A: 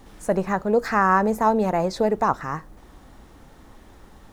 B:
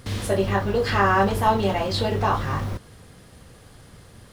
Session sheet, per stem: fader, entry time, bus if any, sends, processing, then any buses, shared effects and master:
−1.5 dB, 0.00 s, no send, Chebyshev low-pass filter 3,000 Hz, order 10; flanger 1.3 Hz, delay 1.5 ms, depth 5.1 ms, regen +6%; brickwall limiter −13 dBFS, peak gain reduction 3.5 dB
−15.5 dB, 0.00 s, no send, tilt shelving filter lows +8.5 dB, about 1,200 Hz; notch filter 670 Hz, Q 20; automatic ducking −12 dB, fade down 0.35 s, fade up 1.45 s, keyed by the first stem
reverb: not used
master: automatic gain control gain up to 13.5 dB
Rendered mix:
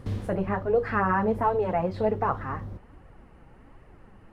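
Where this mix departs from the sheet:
stem B −15.5 dB → −5.5 dB
master: missing automatic gain control gain up to 13.5 dB

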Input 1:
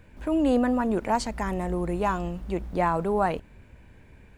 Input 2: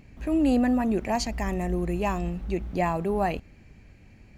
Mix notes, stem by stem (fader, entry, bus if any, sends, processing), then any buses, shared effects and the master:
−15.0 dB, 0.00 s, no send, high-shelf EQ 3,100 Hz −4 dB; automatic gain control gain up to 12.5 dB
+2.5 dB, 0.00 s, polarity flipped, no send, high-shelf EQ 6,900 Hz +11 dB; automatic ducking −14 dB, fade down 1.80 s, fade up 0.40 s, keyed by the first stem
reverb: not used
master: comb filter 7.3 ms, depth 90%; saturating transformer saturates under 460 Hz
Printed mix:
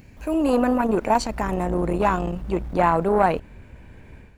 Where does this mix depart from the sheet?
stem 1 −15.0 dB → −3.5 dB
master: missing comb filter 7.3 ms, depth 90%

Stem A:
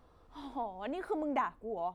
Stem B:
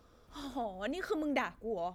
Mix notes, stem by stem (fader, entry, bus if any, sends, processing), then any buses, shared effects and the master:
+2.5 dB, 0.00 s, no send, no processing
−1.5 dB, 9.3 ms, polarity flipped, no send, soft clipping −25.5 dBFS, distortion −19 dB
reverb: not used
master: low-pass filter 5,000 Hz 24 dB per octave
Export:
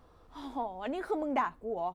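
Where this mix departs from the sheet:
stem B −1.5 dB → −11.0 dB
master: missing low-pass filter 5,000 Hz 24 dB per octave

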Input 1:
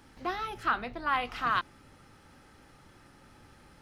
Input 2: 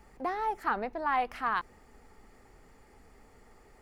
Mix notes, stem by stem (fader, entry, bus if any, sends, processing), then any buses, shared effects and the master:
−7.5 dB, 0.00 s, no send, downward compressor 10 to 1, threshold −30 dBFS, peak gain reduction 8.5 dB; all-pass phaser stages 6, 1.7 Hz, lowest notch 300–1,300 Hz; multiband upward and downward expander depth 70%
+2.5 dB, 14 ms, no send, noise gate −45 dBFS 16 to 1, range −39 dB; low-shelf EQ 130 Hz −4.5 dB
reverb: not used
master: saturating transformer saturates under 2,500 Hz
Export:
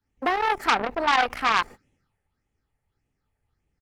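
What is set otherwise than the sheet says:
stem 1: missing downward compressor 10 to 1, threshold −30 dBFS, peak gain reduction 8.5 dB
stem 2 +2.5 dB → +12.5 dB

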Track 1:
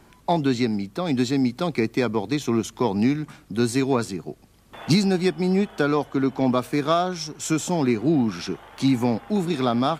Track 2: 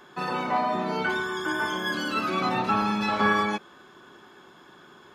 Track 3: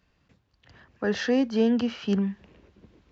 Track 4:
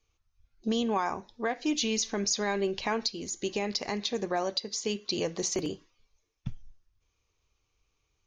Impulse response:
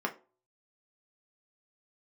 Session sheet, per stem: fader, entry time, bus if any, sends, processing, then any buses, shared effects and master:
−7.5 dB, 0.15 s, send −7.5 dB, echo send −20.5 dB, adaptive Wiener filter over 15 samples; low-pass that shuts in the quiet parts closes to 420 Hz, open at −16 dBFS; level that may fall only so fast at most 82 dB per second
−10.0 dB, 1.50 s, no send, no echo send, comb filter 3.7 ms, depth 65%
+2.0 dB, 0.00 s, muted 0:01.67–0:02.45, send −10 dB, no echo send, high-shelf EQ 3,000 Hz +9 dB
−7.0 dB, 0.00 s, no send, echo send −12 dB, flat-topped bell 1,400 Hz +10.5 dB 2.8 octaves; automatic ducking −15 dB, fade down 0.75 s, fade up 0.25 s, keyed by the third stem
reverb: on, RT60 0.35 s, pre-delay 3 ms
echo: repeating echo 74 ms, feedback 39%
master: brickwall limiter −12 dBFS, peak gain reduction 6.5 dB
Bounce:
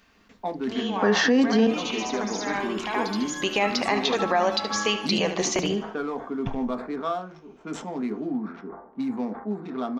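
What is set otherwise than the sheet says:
stem 1 −7.5 dB → −17.0 dB
stem 4 −7.0 dB → +3.5 dB
reverb return +6.5 dB

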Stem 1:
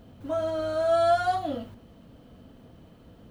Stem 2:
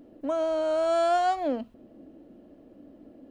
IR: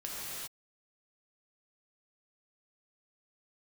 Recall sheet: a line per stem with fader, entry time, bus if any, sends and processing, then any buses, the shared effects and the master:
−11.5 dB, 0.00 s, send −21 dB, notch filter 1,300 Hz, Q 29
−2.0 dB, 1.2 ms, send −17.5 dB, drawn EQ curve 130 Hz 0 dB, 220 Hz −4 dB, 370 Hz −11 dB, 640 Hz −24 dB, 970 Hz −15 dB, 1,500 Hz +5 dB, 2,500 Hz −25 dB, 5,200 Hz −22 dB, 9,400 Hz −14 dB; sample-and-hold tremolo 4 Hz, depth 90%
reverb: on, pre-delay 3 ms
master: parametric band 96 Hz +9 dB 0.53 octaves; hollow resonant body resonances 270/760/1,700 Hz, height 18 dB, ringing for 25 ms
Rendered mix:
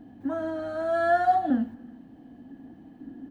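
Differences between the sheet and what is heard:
stem 1: send off
master: missing parametric band 96 Hz +9 dB 0.53 octaves

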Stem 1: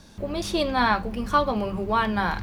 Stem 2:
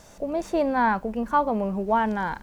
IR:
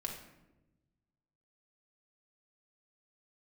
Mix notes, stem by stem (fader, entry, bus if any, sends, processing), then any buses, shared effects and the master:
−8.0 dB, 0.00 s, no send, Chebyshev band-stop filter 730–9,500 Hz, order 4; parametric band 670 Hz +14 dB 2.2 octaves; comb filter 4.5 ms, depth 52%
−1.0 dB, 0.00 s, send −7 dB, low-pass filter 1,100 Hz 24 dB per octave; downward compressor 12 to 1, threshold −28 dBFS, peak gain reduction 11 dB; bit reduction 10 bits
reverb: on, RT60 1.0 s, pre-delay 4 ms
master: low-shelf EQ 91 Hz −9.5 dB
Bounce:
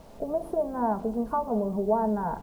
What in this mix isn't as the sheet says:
stem 1 −8.0 dB → −15.0 dB
master: missing low-shelf EQ 91 Hz −9.5 dB

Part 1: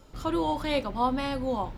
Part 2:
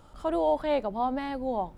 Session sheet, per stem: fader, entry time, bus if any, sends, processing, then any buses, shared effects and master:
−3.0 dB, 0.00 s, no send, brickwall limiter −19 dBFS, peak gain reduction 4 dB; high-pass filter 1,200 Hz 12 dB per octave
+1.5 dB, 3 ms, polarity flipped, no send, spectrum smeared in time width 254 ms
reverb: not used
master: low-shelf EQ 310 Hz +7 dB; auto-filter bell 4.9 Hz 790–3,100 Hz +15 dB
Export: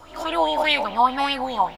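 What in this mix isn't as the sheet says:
stem 1 −3.0 dB → +6.0 dB
master: missing low-shelf EQ 310 Hz +7 dB

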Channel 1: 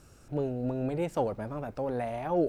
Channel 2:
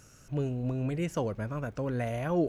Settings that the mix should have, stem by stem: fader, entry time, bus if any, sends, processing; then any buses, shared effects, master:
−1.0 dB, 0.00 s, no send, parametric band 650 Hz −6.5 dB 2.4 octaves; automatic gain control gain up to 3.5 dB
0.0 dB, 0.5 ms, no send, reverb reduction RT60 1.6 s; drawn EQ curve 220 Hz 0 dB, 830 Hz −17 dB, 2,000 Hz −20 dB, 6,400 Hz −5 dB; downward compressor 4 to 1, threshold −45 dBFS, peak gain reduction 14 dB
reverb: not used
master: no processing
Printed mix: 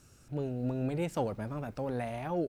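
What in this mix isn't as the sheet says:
stem 2 0.0 dB → −7.0 dB
master: extra low-shelf EQ 62 Hz −8.5 dB

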